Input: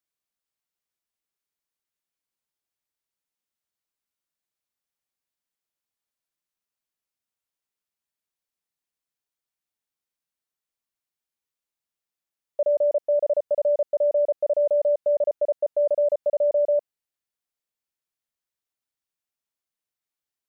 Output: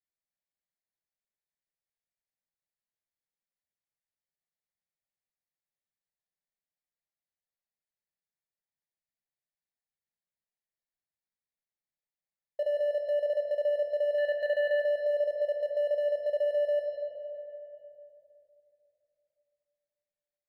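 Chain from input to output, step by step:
adaptive Wiener filter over 15 samples
0:14.18–0:14.80: leveller curve on the samples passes 1
drawn EQ curve 190 Hz 0 dB, 280 Hz −13 dB, 530 Hz −2 dB, 800 Hz −3 dB, 1,200 Hz −18 dB, 1,800 Hz +4 dB
on a send at −2 dB: convolution reverb RT60 2.9 s, pre-delay 5 ms
on the sum: downward compressor 1.5 to 1, threshold −27 dBFS, peak gain reduction 4.5 dB
low-shelf EQ 390 Hz −3.5 dB
level −3 dB

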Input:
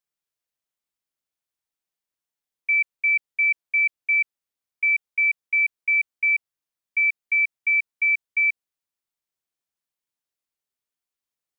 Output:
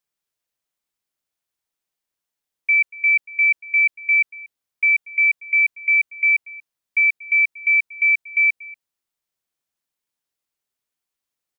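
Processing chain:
single-tap delay 236 ms −21 dB
level +4 dB

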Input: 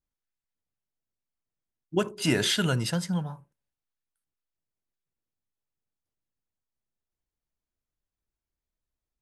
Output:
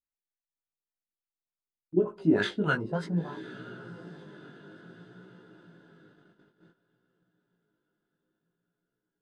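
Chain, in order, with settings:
auto-filter low-pass sine 3.4 Hz 330–1,700 Hz
high-shelf EQ 3,200 Hz +11 dB
feedback delay with all-pass diffusion 1,010 ms, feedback 50%, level −16 dB
chorus effect 0.56 Hz, delay 16 ms, depth 4.2 ms
noise gate −58 dBFS, range −12 dB
graphic EQ with 15 bands 100 Hz −6 dB, 4,000 Hz +6 dB, 10,000 Hz +10 dB

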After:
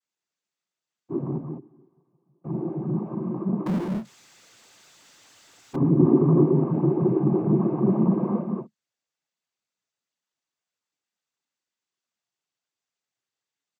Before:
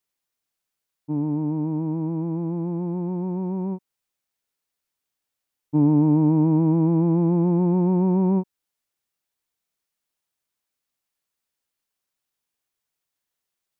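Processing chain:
0:01.36–0:02.44: noise gate −20 dBFS, range −38 dB
chorus effect 2.2 Hz, delay 19 ms, depth 4.3 ms
on a send: single-tap delay 202 ms −5 dB
on the sum: cochlear-implant simulation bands 16
0:03.66–0:05.76: power curve on the samples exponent 0.5

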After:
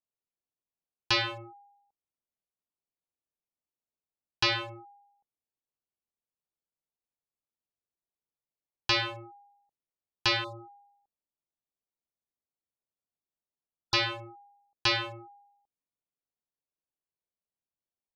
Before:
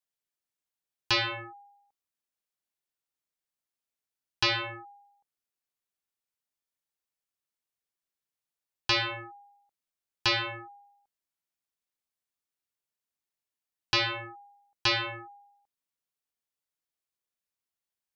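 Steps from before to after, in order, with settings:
adaptive Wiener filter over 25 samples
0:10.44–0:13.94: linear-phase brick-wall band-stop 1,400–3,500 Hz

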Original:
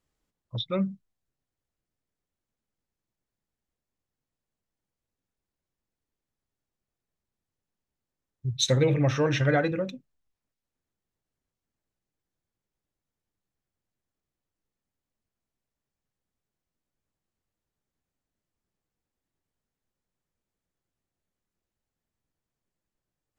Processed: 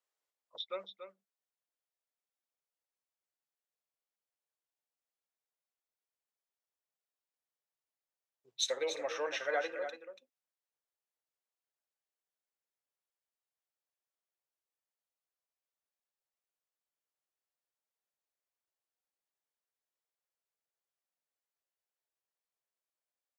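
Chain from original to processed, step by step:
high-pass filter 490 Hz 24 dB per octave
single-tap delay 285 ms −9.5 dB
level −7.5 dB

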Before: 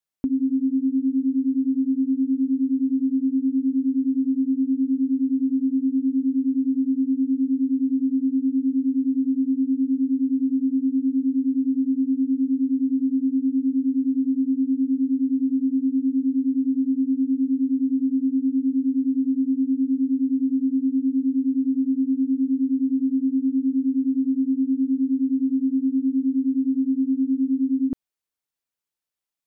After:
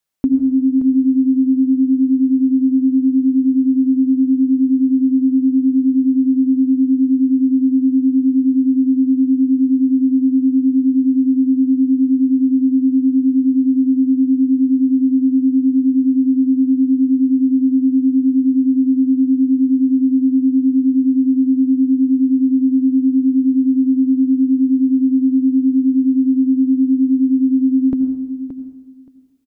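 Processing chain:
repeating echo 574 ms, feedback 16%, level −11 dB
on a send at −10 dB: convolution reverb RT60 1.2 s, pre-delay 76 ms
on the sum: level +8 dB

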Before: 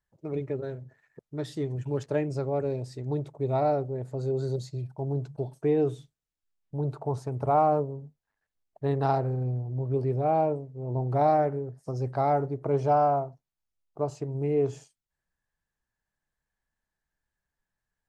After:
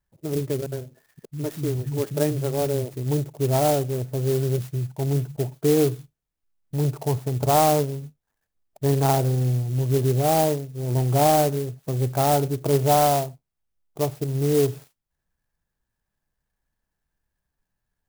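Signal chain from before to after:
low-shelf EQ 360 Hz +5 dB
0:00.66–0:02.94: multiband delay without the direct sound lows, highs 60 ms, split 210 Hz
converter with an unsteady clock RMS 0.076 ms
level +3 dB

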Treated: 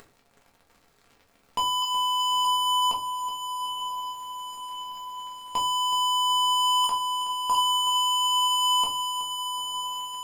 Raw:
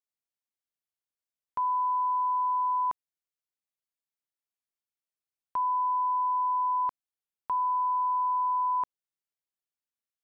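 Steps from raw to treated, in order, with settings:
adaptive Wiener filter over 15 samples
0:01.82–0:02.45: high-pass filter 670 Hz 6 dB per octave
0:06.84–0:07.55: spectral tilt +4 dB per octave
upward compression, threshold −36 dBFS
leveller curve on the samples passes 5
feedback delay with all-pass diffusion 957 ms, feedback 65%, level −10 dB
rectangular room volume 190 cubic metres, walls furnished, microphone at 1.7 metres
feedback echo at a low word length 373 ms, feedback 55%, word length 9 bits, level −12 dB
level −1.5 dB

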